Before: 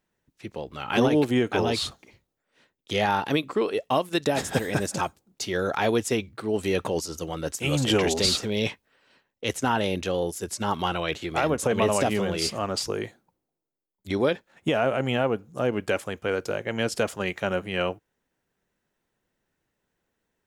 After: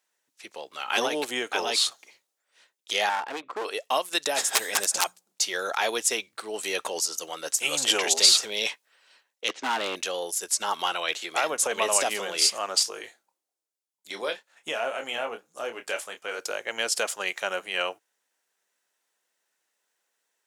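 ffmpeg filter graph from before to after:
ffmpeg -i in.wav -filter_complex "[0:a]asettb=1/sr,asplit=3[link_01][link_02][link_03];[link_01]atrim=end=3.094[link_04];[link_02]atrim=start=3.09:end=3.65,asetpts=PTS-STARTPTS,afade=type=in:duration=0.004:curve=qsin,afade=type=out:start_time=0.556:duration=0.004:curve=qsin,lowpass=1700,aeval=exprs='clip(val(0),-1,0.0447)':channel_layout=same[link_05];[link_03]atrim=start=3.646[link_06];[link_04][link_05]acrossfade=duration=0.004:curve1=hsin:curve2=qsin[link_07];[link_07][link_06]acrossfade=duration=0.004:curve1=qsin:curve2=hsin,asettb=1/sr,asplit=3[link_08][link_09][link_10];[link_08]atrim=end=4.494[link_11];[link_09]atrim=start=4.49:end=5.42,asetpts=PTS-STARTPTS,afade=type=in:duration=0.004:curve=qsin,afade=type=out:start_time=0.926:duration=0.004:curve=qsin,bandreject=frequency=60:width_type=h:width=6,bandreject=frequency=120:width_type=h:width=6,bandreject=frequency=180:width_type=h:width=6,aeval=exprs='(mod(6.68*val(0)+1,2)-1)/6.68':channel_layout=same[link_12];[link_10]atrim=start=5.416[link_13];[link_11][link_12]acrossfade=duration=0.004:curve1=hsin:curve2=qsin[link_14];[link_14][link_13]acrossfade=duration=0.004:curve1=qsin:curve2=hsin,asettb=1/sr,asplit=3[link_15][link_16][link_17];[link_15]atrim=end=9.484[link_18];[link_16]atrim=start=9.48:end=9.96,asetpts=PTS-STARTPTS,afade=type=in:duration=0.004:curve=qsin,afade=type=out:start_time=0.476:duration=0.004:curve=qsin,lowpass=frequency=3900:width=0.5412,lowpass=frequency=3900:width=1.3066,equalizer=frequency=290:width=1.4:gain=9.5,asoftclip=type=hard:threshold=-19dB[link_19];[link_17]atrim=start=9.956[link_20];[link_18][link_19]acrossfade=duration=0.004:curve1=hsin:curve2=qsin[link_21];[link_21][link_20]acrossfade=duration=0.004:curve1=qsin:curve2=hsin,asettb=1/sr,asplit=3[link_22][link_23][link_24];[link_22]atrim=end=12.834[link_25];[link_23]atrim=start=12.83:end=16.39,asetpts=PTS-STARTPTS,afade=type=in:duration=0.004:curve=qsin,afade=type=out:start_time=3.556:duration=0.004:curve=qsin,flanger=delay=2.6:depth=7.7:regen=-61:speed=1.8:shape=triangular,asplit=2[link_26][link_27];[link_27]adelay=26,volume=-8dB[link_28];[link_26][link_28]amix=inputs=2:normalize=0,atrim=end_sample=156996[link_29];[link_24]atrim=start=16.386[link_30];[link_25][link_29]acrossfade=duration=0.004:curve1=hsin:curve2=qsin[link_31];[link_31][link_30]acrossfade=duration=0.004:curve1=qsin:curve2=hsin,highpass=640,equalizer=frequency=8100:width_type=o:width=2.1:gain=9.5" out.wav

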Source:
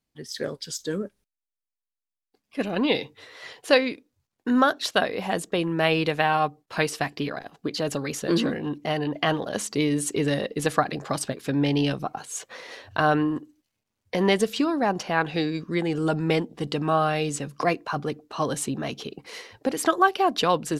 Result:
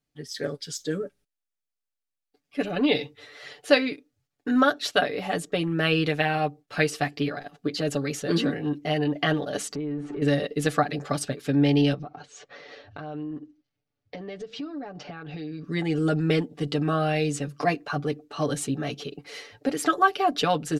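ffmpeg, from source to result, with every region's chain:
ffmpeg -i in.wav -filter_complex "[0:a]asettb=1/sr,asplit=3[link_01][link_02][link_03];[link_01]atrim=end=9.754[link_04];[link_02]atrim=start=9.75:end=10.22,asetpts=PTS-STARTPTS,afade=type=in:duration=0.004:curve=qsin,afade=type=out:start_time=0.466:duration=0.004:curve=qsin,aeval=exprs='val(0)+0.5*0.0237*sgn(val(0))':channel_layout=same,lowpass=1400,acompressor=threshold=-30dB:ratio=6:attack=3.2:release=140:knee=1:detection=peak[link_05];[link_03]atrim=start=10.216[link_06];[link_04][link_05]acrossfade=duration=0.004:curve1=hsin:curve2=qsin[link_07];[link_07][link_06]acrossfade=duration=0.004:curve1=qsin:curve2=hsin,asettb=1/sr,asplit=3[link_08][link_09][link_10];[link_08]atrim=end=11.944[link_11];[link_09]atrim=start=11.94:end=15.64,asetpts=PTS-STARTPTS,afade=type=in:duration=0.004:curve=qsin,afade=type=out:start_time=3.696:duration=0.004:curve=qsin,lowpass=frequency=5400:width=0.5412,lowpass=frequency=5400:width=1.3066,equalizer=frequency=3300:width=0.36:gain=-5,acompressor=threshold=-33dB:ratio=6:attack=3.2:release=140:knee=1:detection=peak[link_12];[link_10]atrim=start=15.636[link_13];[link_11][link_12]acrossfade=duration=0.004:curve1=hsin:curve2=qsin[link_14];[link_14][link_13]acrossfade=duration=0.004:curve1=qsin:curve2=hsin,highshelf=frequency=9000:gain=-5,bandreject=frequency=990:width=5.3,aecho=1:1:6.9:0.74,volume=-2dB" out.wav

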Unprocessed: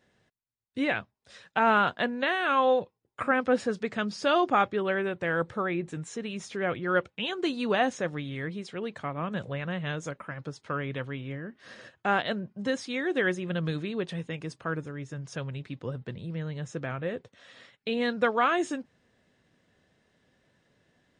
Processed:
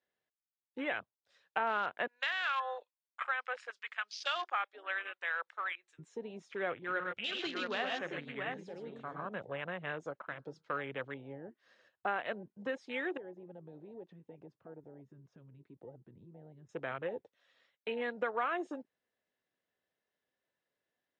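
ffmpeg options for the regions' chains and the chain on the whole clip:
ffmpeg -i in.wav -filter_complex "[0:a]asettb=1/sr,asplit=3[link_01][link_02][link_03];[link_01]atrim=end=2.074[link_04];[link_02]atrim=start=2.07:end=5.99,asetpts=PTS-STARTPTS,afade=type=in:duration=0.004:curve=qsin,afade=type=out:start_time=3.916:duration=0.004:curve=qsin,highpass=1300,highshelf=frequency=4300:gain=5.5[link_05];[link_03]atrim=start=5.986[link_06];[link_04][link_05]acrossfade=duration=0.004:curve1=hsin:curve2=qsin[link_07];[link_07][link_06]acrossfade=duration=0.004:curve1=qsin:curve2=hsin,asettb=1/sr,asplit=3[link_08][link_09][link_10];[link_08]atrim=end=6.754[link_11];[link_09]atrim=start=6.75:end=9.26,asetpts=PTS-STARTPTS,afade=type=in:duration=0.004:curve=qsin,afade=type=out:start_time=2.506:duration=0.004:curve=qsin,equalizer=frequency=550:width_type=o:width=2.6:gain=-8,aecho=1:1:48|60|113|125|135|675:0.237|0.126|0.531|0.355|0.316|0.531,atrim=end_sample=110691[link_12];[link_10]atrim=start=9.256[link_13];[link_11][link_12]acrossfade=duration=0.004:curve1=hsin:curve2=qsin[link_14];[link_14][link_13]acrossfade=duration=0.004:curve1=qsin:curve2=hsin,asettb=1/sr,asplit=3[link_15][link_16][link_17];[link_15]atrim=end=10.154[link_18];[link_16]atrim=start=10.15:end=10.75,asetpts=PTS-STARTPTS,afade=type=in:duration=0.004:curve=qsin,afade=type=out:start_time=0.596:duration=0.004:curve=qsin,equalizer=frequency=4800:width_type=o:width=0.81:gain=4.5,bandreject=frequency=78.49:width_type=h:width=4,bandreject=frequency=156.98:width_type=h:width=4,bandreject=frequency=235.47:width_type=h:width=4,bandreject=frequency=313.96:width_type=h:width=4,bandreject=frequency=392.45:width_type=h:width=4,bandreject=frequency=470.94:width_type=h:width=4,bandreject=frequency=549.43:width_type=h:width=4,bandreject=frequency=627.92:width_type=h:width=4,bandreject=frequency=706.41:width_type=h:width=4,bandreject=frequency=784.9:width_type=h:width=4,bandreject=frequency=863.39:width_type=h:width=4,bandreject=frequency=941.88:width_type=h:width=4,bandreject=frequency=1020.37:width_type=h:width=4,bandreject=frequency=1098.86:width_type=h:width=4,bandreject=frequency=1177.35:width_type=h:width=4,bandreject=frequency=1255.84:width_type=h:width=4,bandreject=frequency=1334.33:width_type=h:width=4,bandreject=frequency=1412.82:width_type=h:width=4,bandreject=frequency=1491.31:width_type=h:width=4,bandreject=frequency=1569.8:width_type=h:width=4,bandreject=frequency=1648.29:width_type=h:width=4[link_19];[link_17]atrim=start=10.746[link_20];[link_18][link_19]acrossfade=duration=0.004:curve1=hsin:curve2=qsin[link_21];[link_21][link_20]acrossfade=duration=0.004:curve1=qsin:curve2=hsin,asettb=1/sr,asplit=3[link_22][link_23][link_24];[link_22]atrim=end=13.174[link_25];[link_23]atrim=start=13.17:end=16.69,asetpts=PTS-STARTPTS,afade=type=in:duration=0.004:curve=qsin,afade=type=out:start_time=3.516:duration=0.004:curve=qsin,lowpass=frequency=1000:poles=1,acompressor=threshold=-41dB:ratio=3:attack=3.2:release=140:knee=1:detection=peak[link_26];[link_24]atrim=start=16.686[link_27];[link_25][link_26]acrossfade=duration=0.004:curve1=hsin:curve2=qsin[link_28];[link_28][link_27]acrossfade=duration=0.004:curve1=qsin:curve2=hsin,afwtdn=0.0126,acompressor=threshold=-28dB:ratio=5,acrossover=split=340 7400:gain=0.2 1 0.178[link_29][link_30][link_31];[link_29][link_30][link_31]amix=inputs=3:normalize=0,volume=-2dB" out.wav

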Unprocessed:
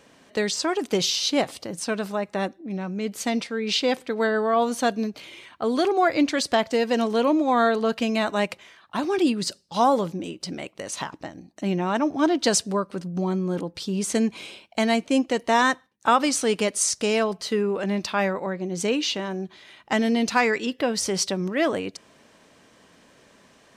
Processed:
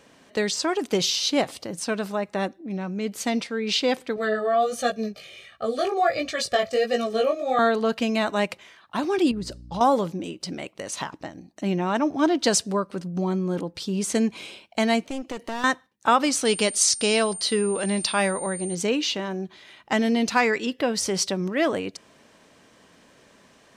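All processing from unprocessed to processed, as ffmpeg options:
ffmpeg -i in.wav -filter_complex "[0:a]asettb=1/sr,asplit=3[link_01][link_02][link_03];[link_01]atrim=end=4.164[link_04];[link_02]atrim=start=4.16:end=7.59,asetpts=PTS-STARTPTS,afade=type=in:duration=0.004:curve=qsin,afade=type=out:start_time=3.426:duration=0.004:curve=qsin,aecho=1:1:1.7:0.74,atrim=end_sample=151263,flanger=delay=16.5:depth=4.4:speed=1.4,asuperstop=centerf=1000:order=8:qfactor=4.3[link_05];[link_03]atrim=start=7.586[link_06];[link_04][link_05]acrossfade=duration=0.004:curve1=hsin:curve2=qsin[link_07];[link_07][link_06]acrossfade=duration=0.004:curve1=qsin:curve2=hsin,asettb=1/sr,asplit=3[link_08][link_09][link_10];[link_08]atrim=end=9.314[link_11];[link_09]atrim=start=9.31:end=9.81,asetpts=PTS-STARTPTS,afade=type=in:duration=0.004:curve=qsin,afade=type=out:start_time=0.496:duration=0.004:curve=qsin,tiltshelf=frequency=1400:gain=7,acompressor=threshold=-28dB:ratio=4:attack=3.2:release=140:knee=1:detection=peak,aeval=exprs='val(0)+0.00794*(sin(2*PI*60*n/s)+sin(2*PI*2*60*n/s)/2+sin(2*PI*3*60*n/s)/3+sin(2*PI*4*60*n/s)/4+sin(2*PI*5*60*n/s)/5)':channel_layout=same[link_12];[link_10]atrim=start=9.806[link_13];[link_11][link_12]acrossfade=duration=0.004:curve1=hsin:curve2=qsin[link_14];[link_14][link_13]acrossfade=duration=0.004:curve1=qsin:curve2=hsin,asettb=1/sr,asplit=3[link_15][link_16][link_17];[link_15]atrim=end=15.014[link_18];[link_16]atrim=start=15.01:end=15.64,asetpts=PTS-STARTPTS,afade=type=in:duration=0.004:curve=qsin,afade=type=out:start_time=0.626:duration=0.004:curve=qsin,aeval=exprs='clip(val(0),-1,0.0282)':channel_layout=same,acompressor=threshold=-29dB:ratio=2.5:attack=3.2:release=140:knee=1:detection=peak[link_19];[link_17]atrim=start=15.636[link_20];[link_18][link_19]acrossfade=duration=0.004:curve1=hsin:curve2=qsin[link_21];[link_21][link_20]acrossfade=duration=0.004:curve1=qsin:curve2=hsin,asettb=1/sr,asplit=3[link_22][link_23][link_24];[link_22]atrim=end=16.454[link_25];[link_23]atrim=start=16.45:end=18.75,asetpts=PTS-STARTPTS,afade=type=in:duration=0.004:curve=qsin,afade=type=out:start_time=2.296:duration=0.004:curve=qsin,equalizer=frequency=4200:width_type=o:width=1.1:gain=8,aeval=exprs='val(0)+0.0224*sin(2*PI*9000*n/s)':channel_layout=same[link_26];[link_24]atrim=start=18.746[link_27];[link_25][link_26]acrossfade=duration=0.004:curve1=hsin:curve2=qsin[link_28];[link_28][link_27]acrossfade=duration=0.004:curve1=qsin:curve2=hsin" out.wav

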